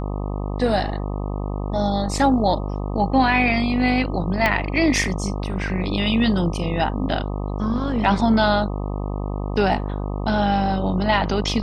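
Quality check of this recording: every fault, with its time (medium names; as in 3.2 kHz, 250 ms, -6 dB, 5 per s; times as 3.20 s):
buzz 50 Hz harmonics 25 -26 dBFS
4.46 s: pop -6 dBFS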